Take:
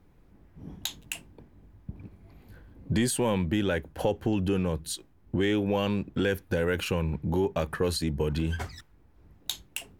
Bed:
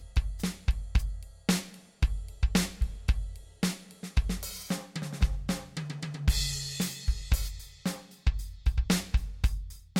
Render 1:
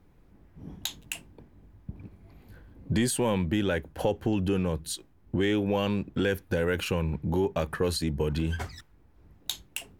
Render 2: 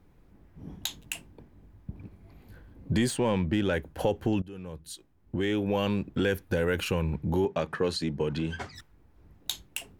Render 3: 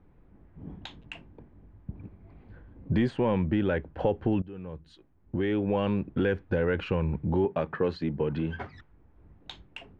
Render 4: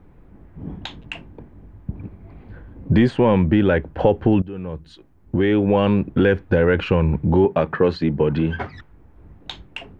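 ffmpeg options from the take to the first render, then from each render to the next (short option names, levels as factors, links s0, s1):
-af anull
-filter_complex "[0:a]asettb=1/sr,asplit=3[s0][s1][s2];[s0]atrim=end=3.084[s3];[s1]atrim=start=3.08:end=3.73,asetpts=PTS-STARTPTS,afade=t=in:d=0.004:c=qsin,afade=t=out:st=0.646:d=0.004:c=qsin,adynamicsmooth=sensitivity=5:basefreq=4400[s4];[s2]atrim=start=3.726[s5];[s3][s4]acrossfade=d=0.004:c1=hsin:c2=qsin[s6];[s6][s5]acrossfade=d=0.004:c1=qsin:c2=hsin,asettb=1/sr,asplit=3[s7][s8][s9];[s7]atrim=end=7.454[s10];[s8]atrim=start=7.45:end=8.75,asetpts=PTS-STARTPTS,afade=t=in:d=0.004:c=qsin,afade=t=out:st=1.296:d=0.004:c=qsin,highpass=140,lowpass=6400[s11];[s9]atrim=start=8.746[s12];[s10][s11]acrossfade=d=0.004:c1=hsin:c2=qsin[s13];[s13][s12]acrossfade=d=0.004:c1=qsin:c2=hsin,asplit=2[s14][s15];[s14]atrim=end=4.42,asetpts=PTS-STARTPTS,afade=t=out:st=4.416:d=0.004:c=hsin:silence=0.0891251[s16];[s15]atrim=start=4.42,asetpts=PTS-STARTPTS,afade=t=in:d=1.45:silence=0.0891251[s17];[s16][s17]concat=n=2:v=0:a=1"
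-af "lowpass=3100,aemphasis=mode=reproduction:type=75fm"
-af "volume=3.16"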